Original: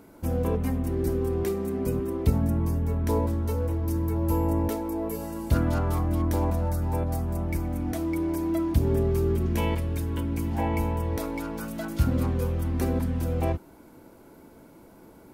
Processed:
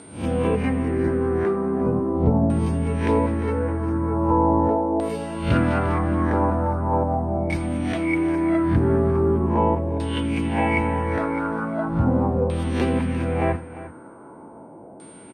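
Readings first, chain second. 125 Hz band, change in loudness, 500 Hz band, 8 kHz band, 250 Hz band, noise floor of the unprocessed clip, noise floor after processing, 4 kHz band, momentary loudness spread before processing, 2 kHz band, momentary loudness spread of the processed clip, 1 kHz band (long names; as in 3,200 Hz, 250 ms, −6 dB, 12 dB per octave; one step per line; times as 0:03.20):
+2.0 dB, +5.0 dB, +7.0 dB, can't be measured, +6.5 dB, −51 dBFS, −43 dBFS, +5.5 dB, 5 LU, +11.0 dB, 5 LU, +10.0 dB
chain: peak hold with a rise ahead of every peak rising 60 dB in 0.42 s
high-pass filter 110 Hz 12 dB per octave
steady tone 8,700 Hz −36 dBFS
auto-filter low-pass saw down 0.4 Hz 680–3,800 Hz
multi-tap delay 83/350 ms −18.5/−15.5 dB
level +5 dB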